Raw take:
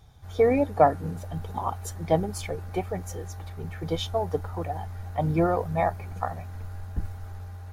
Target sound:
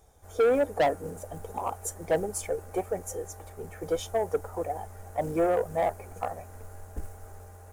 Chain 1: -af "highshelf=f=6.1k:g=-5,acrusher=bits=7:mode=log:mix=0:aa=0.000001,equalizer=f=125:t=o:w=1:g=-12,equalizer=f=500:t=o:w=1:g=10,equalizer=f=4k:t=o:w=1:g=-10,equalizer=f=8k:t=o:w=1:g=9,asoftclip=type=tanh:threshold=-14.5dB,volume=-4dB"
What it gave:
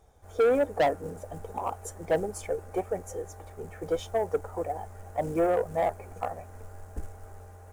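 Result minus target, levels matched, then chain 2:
8000 Hz band -6.5 dB
-af "highshelf=f=6.1k:g=6,acrusher=bits=7:mode=log:mix=0:aa=0.000001,equalizer=f=125:t=o:w=1:g=-12,equalizer=f=500:t=o:w=1:g=10,equalizer=f=4k:t=o:w=1:g=-10,equalizer=f=8k:t=o:w=1:g=9,asoftclip=type=tanh:threshold=-14.5dB,volume=-4dB"

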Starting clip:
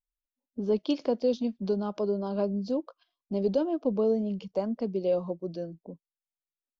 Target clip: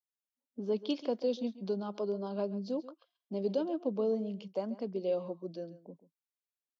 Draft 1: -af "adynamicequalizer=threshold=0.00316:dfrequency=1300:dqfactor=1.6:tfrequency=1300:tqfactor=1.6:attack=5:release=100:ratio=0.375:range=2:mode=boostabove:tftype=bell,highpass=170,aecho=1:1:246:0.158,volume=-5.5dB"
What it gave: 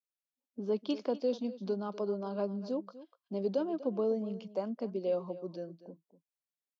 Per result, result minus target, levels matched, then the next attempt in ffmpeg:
echo 0.11 s late; 4000 Hz band -2.5 dB
-af "adynamicequalizer=threshold=0.00316:dfrequency=1300:dqfactor=1.6:tfrequency=1300:tqfactor=1.6:attack=5:release=100:ratio=0.375:range=2:mode=boostabove:tftype=bell,highpass=170,aecho=1:1:136:0.158,volume=-5.5dB"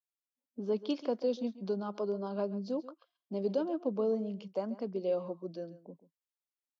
4000 Hz band -3.0 dB
-af "adynamicequalizer=threshold=0.00316:dfrequency=3400:dqfactor=1.6:tfrequency=3400:tqfactor=1.6:attack=5:release=100:ratio=0.375:range=2:mode=boostabove:tftype=bell,highpass=170,aecho=1:1:136:0.158,volume=-5.5dB"

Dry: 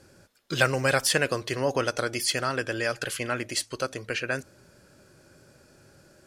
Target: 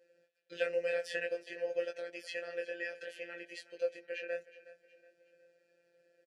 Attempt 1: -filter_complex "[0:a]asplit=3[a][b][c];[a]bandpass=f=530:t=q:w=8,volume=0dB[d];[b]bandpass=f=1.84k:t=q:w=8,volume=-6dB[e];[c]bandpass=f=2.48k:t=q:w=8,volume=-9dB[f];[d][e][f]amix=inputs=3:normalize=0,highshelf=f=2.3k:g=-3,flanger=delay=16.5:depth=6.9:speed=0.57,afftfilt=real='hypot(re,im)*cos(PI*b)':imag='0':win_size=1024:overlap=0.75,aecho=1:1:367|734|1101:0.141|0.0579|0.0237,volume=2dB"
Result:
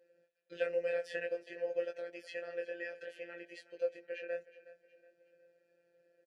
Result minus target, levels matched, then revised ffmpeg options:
4000 Hz band -5.0 dB
-filter_complex "[0:a]asplit=3[a][b][c];[a]bandpass=f=530:t=q:w=8,volume=0dB[d];[b]bandpass=f=1.84k:t=q:w=8,volume=-6dB[e];[c]bandpass=f=2.48k:t=q:w=8,volume=-9dB[f];[d][e][f]amix=inputs=3:normalize=0,highshelf=f=2.3k:g=6,flanger=delay=16.5:depth=6.9:speed=0.57,afftfilt=real='hypot(re,im)*cos(PI*b)':imag='0':win_size=1024:overlap=0.75,aecho=1:1:367|734|1101:0.141|0.0579|0.0237,volume=2dB"

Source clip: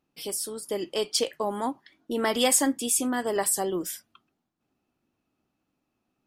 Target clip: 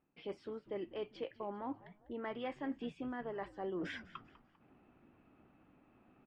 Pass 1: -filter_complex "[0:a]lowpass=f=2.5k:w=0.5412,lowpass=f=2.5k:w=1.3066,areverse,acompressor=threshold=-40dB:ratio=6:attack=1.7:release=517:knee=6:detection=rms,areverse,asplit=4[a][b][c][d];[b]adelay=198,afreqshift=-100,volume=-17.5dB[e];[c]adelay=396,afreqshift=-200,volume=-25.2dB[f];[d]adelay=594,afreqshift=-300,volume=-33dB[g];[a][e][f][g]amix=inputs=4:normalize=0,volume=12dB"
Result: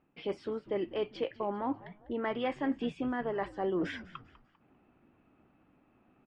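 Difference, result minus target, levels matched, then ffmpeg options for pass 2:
compressor: peak gain reduction -8.5 dB
-filter_complex "[0:a]lowpass=f=2.5k:w=0.5412,lowpass=f=2.5k:w=1.3066,areverse,acompressor=threshold=-50dB:ratio=6:attack=1.7:release=517:knee=6:detection=rms,areverse,asplit=4[a][b][c][d];[b]adelay=198,afreqshift=-100,volume=-17.5dB[e];[c]adelay=396,afreqshift=-200,volume=-25.2dB[f];[d]adelay=594,afreqshift=-300,volume=-33dB[g];[a][e][f][g]amix=inputs=4:normalize=0,volume=12dB"

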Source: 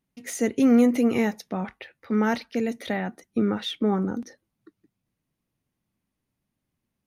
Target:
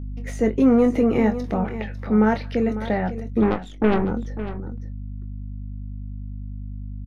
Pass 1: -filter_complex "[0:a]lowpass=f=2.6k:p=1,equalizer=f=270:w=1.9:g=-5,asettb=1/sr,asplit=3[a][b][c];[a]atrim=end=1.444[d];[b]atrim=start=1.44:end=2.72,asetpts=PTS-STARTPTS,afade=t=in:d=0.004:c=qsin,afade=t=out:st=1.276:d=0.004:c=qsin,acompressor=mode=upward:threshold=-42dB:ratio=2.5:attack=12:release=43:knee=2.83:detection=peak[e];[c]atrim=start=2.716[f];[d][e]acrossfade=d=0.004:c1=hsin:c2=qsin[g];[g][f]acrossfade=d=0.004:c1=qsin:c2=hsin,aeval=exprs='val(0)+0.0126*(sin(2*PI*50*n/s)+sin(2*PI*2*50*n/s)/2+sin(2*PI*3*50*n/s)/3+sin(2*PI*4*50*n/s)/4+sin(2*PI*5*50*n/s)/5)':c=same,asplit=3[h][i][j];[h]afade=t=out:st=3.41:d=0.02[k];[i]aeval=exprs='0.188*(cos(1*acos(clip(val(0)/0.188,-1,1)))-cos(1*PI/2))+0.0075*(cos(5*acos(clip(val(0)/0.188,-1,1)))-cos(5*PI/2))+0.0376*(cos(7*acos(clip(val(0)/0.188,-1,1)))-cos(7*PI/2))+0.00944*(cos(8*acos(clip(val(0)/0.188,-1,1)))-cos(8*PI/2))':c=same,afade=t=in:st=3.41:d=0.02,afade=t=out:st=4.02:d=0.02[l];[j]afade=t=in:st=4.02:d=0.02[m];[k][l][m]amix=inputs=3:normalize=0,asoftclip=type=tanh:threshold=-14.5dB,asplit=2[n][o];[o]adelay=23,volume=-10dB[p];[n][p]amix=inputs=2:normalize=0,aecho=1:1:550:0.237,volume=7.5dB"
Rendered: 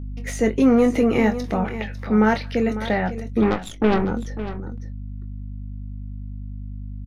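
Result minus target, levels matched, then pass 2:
2000 Hz band +4.0 dB
-filter_complex "[0:a]lowpass=f=920:p=1,equalizer=f=270:w=1.9:g=-5,asettb=1/sr,asplit=3[a][b][c];[a]atrim=end=1.444[d];[b]atrim=start=1.44:end=2.72,asetpts=PTS-STARTPTS,afade=t=in:d=0.004:c=qsin,afade=t=out:st=1.276:d=0.004:c=qsin,acompressor=mode=upward:threshold=-42dB:ratio=2.5:attack=12:release=43:knee=2.83:detection=peak[e];[c]atrim=start=2.716[f];[d][e]acrossfade=d=0.004:c1=hsin:c2=qsin[g];[g][f]acrossfade=d=0.004:c1=qsin:c2=hsin,aeval=exprs='val(0)+0.0126*(sin(2*PI*50*n/s)+sin(2*PI*2*50*n/s)/2+sin(2*PI*3*50*n/s)/3+sin(2*PI*4*50*n/s)/4+sin(2*PI*5*50*n/s)/5)':c=same,asplit=3[h][i][j];[h]afade=t=out:st=3.41:d=0.02[k];[i]aeval=exprs='0.188*(cos(1*acos(clip(val(0)/0.188,-1,1)))-cos(1*PI/2))+0.0075*(cos(5*acos(clip(val(0)/0.188,-1,1)))-cos(5*PI/2))+0.0376*(cos(7*acos(clip(val(0)/0.188,-1,1)))-cos(7*PI/2))+0.00944*(cos(8*acos(clip(val(0)/0.188,-1,1)))-cos(8*PI/2))':c=same,afade=t=in:st=3.41:d=0.02,afade=t=out:st=4.02:d=0.02[l];[j]afade=t=in:st=4.02:d=0.02[m];[k][l][m]amix=inputs=3:normalize=0,asoftclip=type=tanh:threshold=-14.5dB,asplit=2[n][o];[o]adelay=23,volume=-10dB[p];[n][p]amix=inputs=2:normalize=0,aecho=1:1:550:0.237,volume=7.5dB"

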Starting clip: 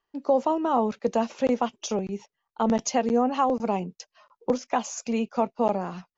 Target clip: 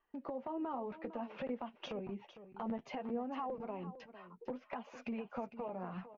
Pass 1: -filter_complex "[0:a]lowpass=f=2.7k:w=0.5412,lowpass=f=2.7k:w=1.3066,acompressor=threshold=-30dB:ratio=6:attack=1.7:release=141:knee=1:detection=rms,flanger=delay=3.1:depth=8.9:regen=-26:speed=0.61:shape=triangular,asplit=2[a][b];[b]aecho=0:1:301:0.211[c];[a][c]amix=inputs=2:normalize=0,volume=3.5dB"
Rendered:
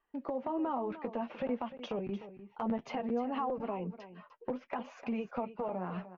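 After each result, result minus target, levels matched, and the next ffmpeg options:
echo 0.153 s early; compressor: peak gain reduction -6 dB
-filter_complex "[0:a]lowpass=f=2.7k:w=0.5412,lowpass=f=2.7k:w=1.3066,acompressor=threshold=-30dB:ratio=6:attack=1.7:release=141:knee=1:detection=rms,flanger=delay=3.1:depth=8.9:regen=-26:speed=0.61:shape=triangular,asplit=2[a][b];[b]aecho=0:1:454:0.211[c];[a][c]amix=inputs=2:normalize=0,volume=3.5dB"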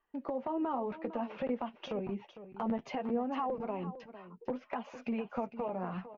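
compressor: peak gain reduction -6 dB
-filter_complex "[0:a]lowpass=f=2.7k:w=0.5412,lowpass=f=2.7k:w=1.3066,acompressor=threshold=-37dB:ratio=6:attack=1.7:release=141:knee=1:detection=rms,flanger=delay=3.1:depth=8.9:regen=-26:speed=0.61:shape=triangular,asplit=2[a][b];[b]aecho=0:1:454:0.211[c];[a][c]amix=inputs=2:normalize=0,volume=3.5dB"

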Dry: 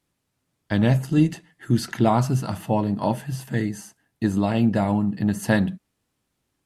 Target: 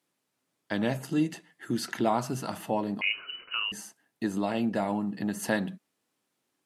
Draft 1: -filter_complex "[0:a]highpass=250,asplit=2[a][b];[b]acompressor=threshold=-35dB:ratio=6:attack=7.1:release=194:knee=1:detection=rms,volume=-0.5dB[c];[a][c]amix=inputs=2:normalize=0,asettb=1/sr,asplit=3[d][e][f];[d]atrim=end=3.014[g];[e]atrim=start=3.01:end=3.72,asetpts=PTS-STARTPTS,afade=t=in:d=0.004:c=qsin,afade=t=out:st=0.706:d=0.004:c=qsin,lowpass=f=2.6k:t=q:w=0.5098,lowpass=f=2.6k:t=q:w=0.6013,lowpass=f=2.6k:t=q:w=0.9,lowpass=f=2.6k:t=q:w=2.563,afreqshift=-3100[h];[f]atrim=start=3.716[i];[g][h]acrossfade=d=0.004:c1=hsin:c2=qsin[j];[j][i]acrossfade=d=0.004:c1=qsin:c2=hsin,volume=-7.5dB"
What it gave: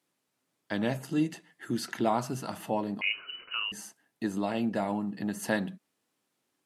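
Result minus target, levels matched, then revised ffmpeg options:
compressor: peak gain reduction +7 dB
-filter_complex "[0:a]highpass=250,asplit=2[a][b];[b]acompressor=threshold=-26.5dB:ratio=6:attack=7.1:release=194:knee=1:detection=rms,volume=-0.5dB[c];[a][c]amix=inputs=2:normalize=0,asettb=1/sr,asplit=3[d][e][f];[d]atrim=end=3.014[g];[e]atrim=start=3.01:end=3.72,asetpts=PTS-STARTPTS,afade=t=in:d=0.004:c=qsin,afade=t=out:st=0.706:d=0.004:c=qsin,lowpass=f=2.6k:t=q:w=0.5098,lowpass=f=2.6k:t=q:w=0.6013,lowpass=f=2.6k:t=q:w=0.9,lowpass=f=2.6k:t=q:w=2.563,afreqshift=-3100[h];[f]atrim=start=3.716[i];[g][h]acrossfade=d=0.004:c1=hsin:c2=qsin[j];[j][i]acrossfade=d=0.004:c1=qsin:c2=hsin,volume=-7.5dB"

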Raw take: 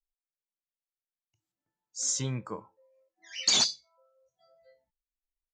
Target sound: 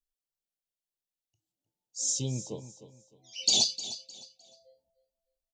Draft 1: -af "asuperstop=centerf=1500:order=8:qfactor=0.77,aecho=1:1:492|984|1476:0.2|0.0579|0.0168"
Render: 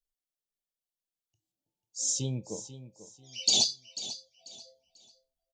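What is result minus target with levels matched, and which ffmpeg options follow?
echo 0.186 s late
-af "asuperstop=centerf=1500:order=8:qfactor=0.77,aecho=1:1:306|612|918:0.2|0.0579|0.0168"

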